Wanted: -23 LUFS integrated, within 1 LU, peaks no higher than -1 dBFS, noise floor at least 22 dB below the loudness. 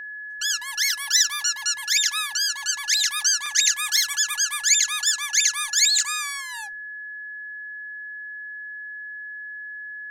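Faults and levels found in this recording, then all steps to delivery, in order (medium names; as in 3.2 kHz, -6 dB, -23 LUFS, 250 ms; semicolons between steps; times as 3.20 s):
dropouts 2; longest dropout 3.1 ms; steady tone 1.7 kHz; tone level -33 dBFS; loudness -20.0 LUFS; peak level -6.0 dBFS; loudness target -23.0 LUFS
-> interpolate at 3.46/3.97 s, 3.1 ms; band-stop 1.7 kHz, Q 30; trim -3 dB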